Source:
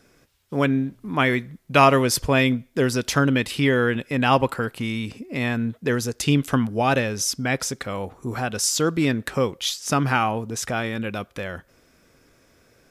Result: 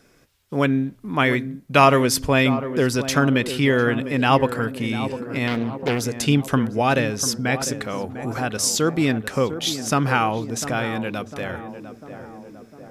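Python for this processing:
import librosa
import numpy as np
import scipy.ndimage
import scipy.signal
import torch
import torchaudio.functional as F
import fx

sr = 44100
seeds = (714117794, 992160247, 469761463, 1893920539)

y = fx.hum_notches(x, sr, base_hz=50, count=2)
y = fx.echo_tape(y, sr, ms=700, feedback_pct=71, wet_db=-9, lp_hz=1000.0, drive_db=8.0, wow_cents=27)
y = fx.doppler_dist(y, sr, depth_ms=0.56, at=(5.47, 6.02))
y = y * 10.0 ** (1.0 / 20.0)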